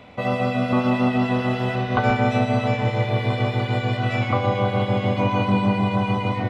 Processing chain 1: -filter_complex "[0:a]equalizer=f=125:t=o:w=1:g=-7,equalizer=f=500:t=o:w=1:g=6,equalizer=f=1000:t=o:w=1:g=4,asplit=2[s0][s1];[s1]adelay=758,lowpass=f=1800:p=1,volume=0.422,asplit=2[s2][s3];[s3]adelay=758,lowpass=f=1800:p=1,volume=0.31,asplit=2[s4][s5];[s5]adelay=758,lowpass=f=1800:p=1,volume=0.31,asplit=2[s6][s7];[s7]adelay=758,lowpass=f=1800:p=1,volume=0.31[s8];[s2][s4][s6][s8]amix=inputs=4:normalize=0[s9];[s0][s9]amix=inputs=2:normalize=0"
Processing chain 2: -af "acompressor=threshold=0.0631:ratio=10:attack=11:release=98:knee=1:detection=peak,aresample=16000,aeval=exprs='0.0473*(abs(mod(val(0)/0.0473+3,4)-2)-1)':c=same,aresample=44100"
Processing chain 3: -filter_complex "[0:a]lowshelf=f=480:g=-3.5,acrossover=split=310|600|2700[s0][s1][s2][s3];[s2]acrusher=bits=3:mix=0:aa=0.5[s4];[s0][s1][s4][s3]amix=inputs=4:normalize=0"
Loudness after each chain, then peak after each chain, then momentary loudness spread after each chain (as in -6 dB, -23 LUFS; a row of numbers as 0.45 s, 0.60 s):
-18.5 LUFS, -31.5 LUFS, -25.0 LUFS; -3.0 dBFS, -25.5 dBFS, -8.0 dBFS; 4 LU, 1 LU, 4 LU